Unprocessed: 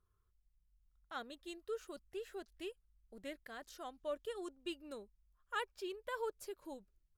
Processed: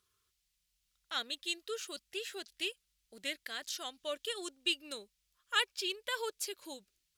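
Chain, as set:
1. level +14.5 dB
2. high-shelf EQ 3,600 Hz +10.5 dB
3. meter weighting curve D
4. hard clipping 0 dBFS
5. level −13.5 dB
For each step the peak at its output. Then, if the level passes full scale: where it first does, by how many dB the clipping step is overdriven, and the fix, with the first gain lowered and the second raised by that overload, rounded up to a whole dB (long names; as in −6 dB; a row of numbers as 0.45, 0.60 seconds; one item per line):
−13.5, −9.5, −1.5, −1.5, −15.0 dBFS
no step passes full scale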